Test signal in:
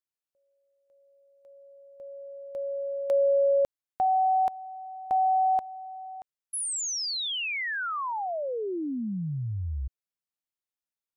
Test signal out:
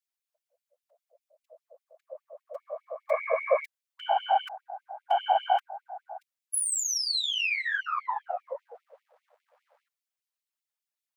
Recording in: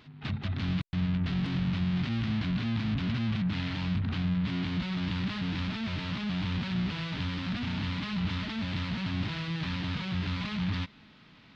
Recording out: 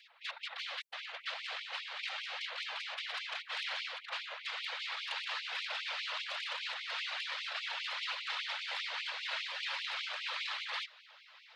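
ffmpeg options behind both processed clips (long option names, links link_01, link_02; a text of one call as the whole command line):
ffmpeg -i in.wav -af "aeval=exprs='0.112*(cos(1*acos(clip(val(0)/0.112,-1,1)))-cos(1*PI/2))+0.02*(cos(2*acos(clip(val(0)/0.112,-1,1)))-cos(2*PI/2))+0.00251*(cos(3*acos(clip(val(0)/0.112,-1,1)))-cos(3*PI/2))+0.0126*(cos(4*acos(clip(val(0)/0.112,-1,1)))-cos(4*PI/2))':channel_layout=same,afftfilt=real='hypot(re,im)*cos(2*PI*random(0))':imag='hypot(re,im)*sin(2*PI*random(1))':win_size=512:overlap=0.75,afftfilt=real='re*gte(b*sr/1024,460*pow(2100/460,0.5+0.5*sin(2*PI*5*pts/sr)))':imag='im*gte(b*sr/1024,460*pow(2100/460,0.5+0.5*sin(2*PI*5*pts/sr)))':win_size=1024:overlap=0.75,volume=8.5dB" out.wav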